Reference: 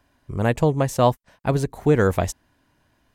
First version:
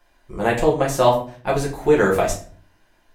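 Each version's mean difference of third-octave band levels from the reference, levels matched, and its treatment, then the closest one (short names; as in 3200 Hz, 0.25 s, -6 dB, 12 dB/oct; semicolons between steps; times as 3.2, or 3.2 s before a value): 6.5 dB: bell 120 Hz -13 dB 2.4 oct; shoebox room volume 39 m³, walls mixed, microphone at 0.89 m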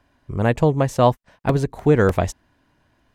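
1.5 dB: high shelf 7000 Hz -10 dB; crackling interface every 0.30 s, samples 128, repeat, from 0.89; gain +2 dB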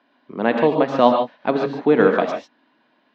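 9.0 dB: elliptic band-pass 220–4000 Hz, stop band 40 dB; non-linear reverb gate 0.17 s rising, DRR 3.5 dB; gain +3.5 dB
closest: second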